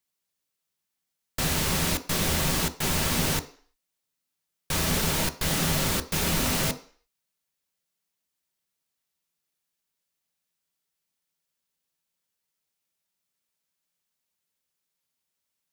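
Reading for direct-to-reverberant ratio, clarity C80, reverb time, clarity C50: 7.5 dB, 19.5 dB, 0.45 s, 15.5 dB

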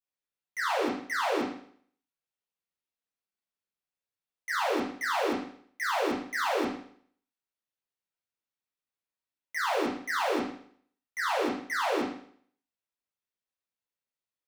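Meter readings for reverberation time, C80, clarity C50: 0.55 s, 8.5 dB, 4.5 dB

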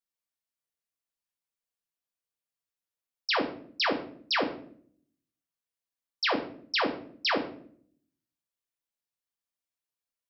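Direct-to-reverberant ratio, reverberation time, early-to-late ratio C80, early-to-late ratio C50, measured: 1.0 dB, 0.55 s, 13.5 dB, 10.0 dB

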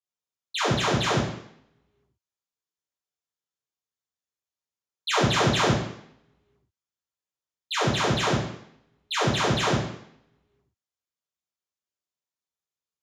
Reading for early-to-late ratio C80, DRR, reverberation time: 6.0 dB, -11.0 dB, 0.70 s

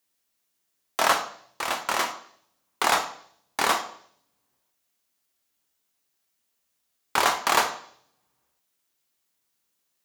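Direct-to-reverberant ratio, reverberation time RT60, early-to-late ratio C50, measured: 6.0 dB, 0.60 s, 11.0 dB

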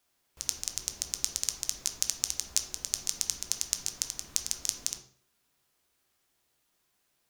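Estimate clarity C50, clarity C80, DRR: 9.5 dB, 13.5 dB, 4.0 dB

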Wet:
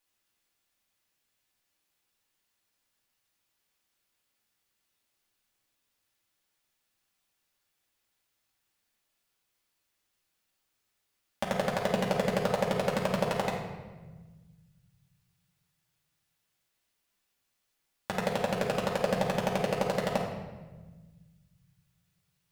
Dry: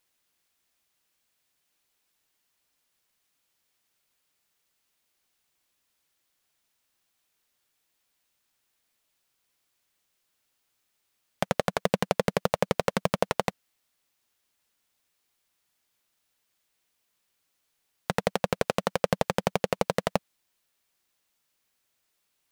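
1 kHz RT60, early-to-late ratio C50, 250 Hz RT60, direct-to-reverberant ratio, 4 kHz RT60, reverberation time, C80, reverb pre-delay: 1.2 s, 2.5 dB, 2.2 s, -4.0 dB, 0.95 s, 1.3 s, 5.5 dB, 4 ms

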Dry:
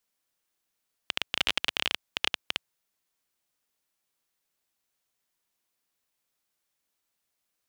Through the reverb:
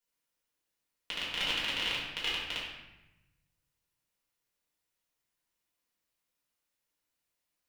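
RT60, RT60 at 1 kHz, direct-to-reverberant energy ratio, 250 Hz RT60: 0.95 s, 0.95 s, -7.5 dB, 1.4 s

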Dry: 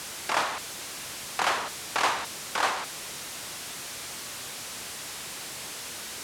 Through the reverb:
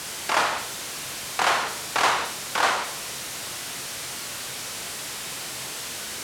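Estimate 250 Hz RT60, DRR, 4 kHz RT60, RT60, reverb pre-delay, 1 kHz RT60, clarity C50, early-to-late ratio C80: 0.55 s, 5.0 dB, 0.45 s, 0.55 s, 28 ms, 0.55 s, 8.0 dB, 11.5 dB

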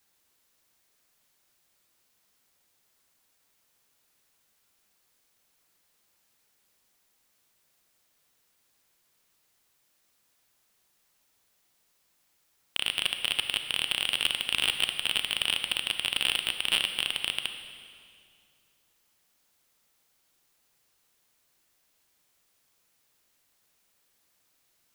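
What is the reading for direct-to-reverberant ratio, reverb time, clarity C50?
7.0 dB, 2.2 s, 7.5 dB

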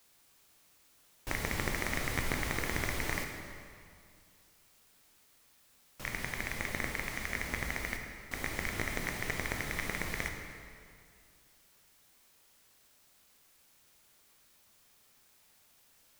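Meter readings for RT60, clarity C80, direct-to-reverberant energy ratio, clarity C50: 2.3 s, 5.5 dB, 3.0 dB, 4.5 dB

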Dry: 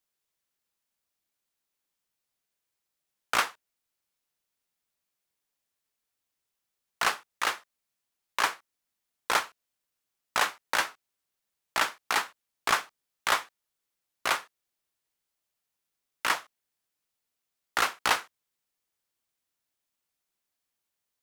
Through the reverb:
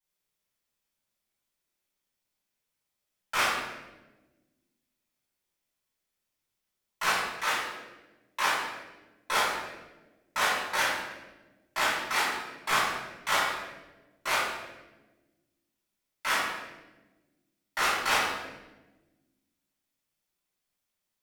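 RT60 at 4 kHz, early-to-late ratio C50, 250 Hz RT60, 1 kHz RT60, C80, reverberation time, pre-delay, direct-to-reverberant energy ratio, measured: 0.85 s, 0.0 dB, 1.9 s, 0.95 s, 3.0 dB, 1.1 s, 3 ms, -12.0 dB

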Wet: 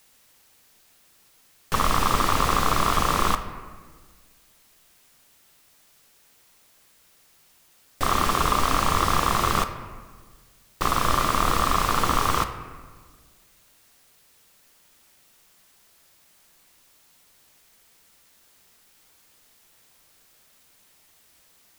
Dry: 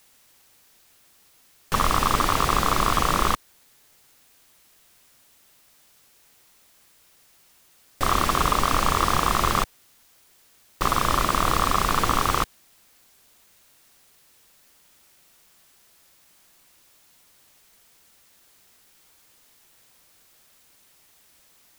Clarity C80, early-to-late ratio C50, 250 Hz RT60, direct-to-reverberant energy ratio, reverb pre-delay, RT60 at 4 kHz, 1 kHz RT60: 11.5 dB, 10.0 dB, 1.9 s, 8.0 dB, 4 ms, 0.95 s, 1.4 s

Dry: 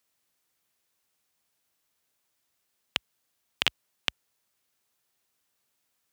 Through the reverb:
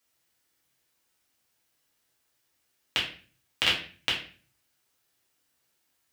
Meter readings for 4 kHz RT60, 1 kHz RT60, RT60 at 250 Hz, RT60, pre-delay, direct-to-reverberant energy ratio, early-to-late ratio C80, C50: 0.35 s, 0.40 s, 0.55 s, 0.40 s, 4 ms, -5.0 dB, 11.0 dB, 6.0 dB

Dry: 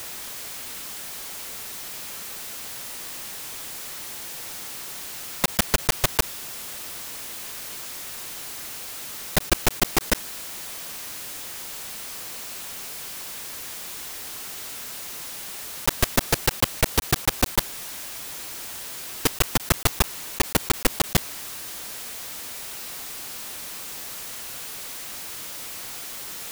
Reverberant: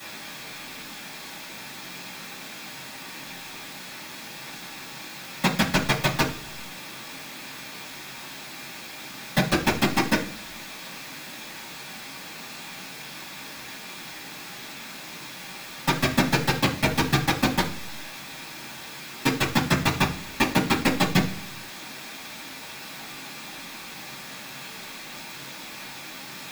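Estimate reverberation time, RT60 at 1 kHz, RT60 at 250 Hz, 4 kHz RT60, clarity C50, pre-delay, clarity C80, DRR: 0.55 s, 0.45 s, 0.75 s, 0.50 s, 10.0 dB, 3 ms, 15.0 dB, -12.0 dB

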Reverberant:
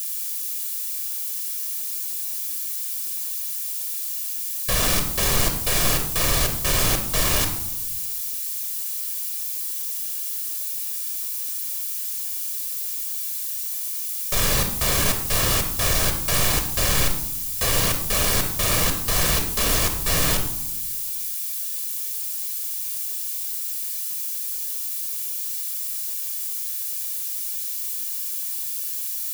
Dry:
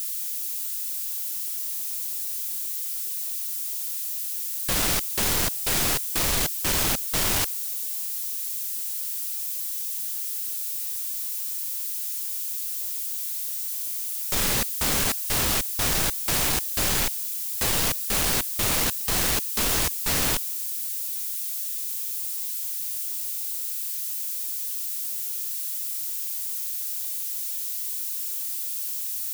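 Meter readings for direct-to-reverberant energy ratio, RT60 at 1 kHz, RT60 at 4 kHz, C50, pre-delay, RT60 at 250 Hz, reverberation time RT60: 5.0 dB, 0.85 s, 0.55 s, 8.0 dB, 14 ms, 1.4 s, 0.85 s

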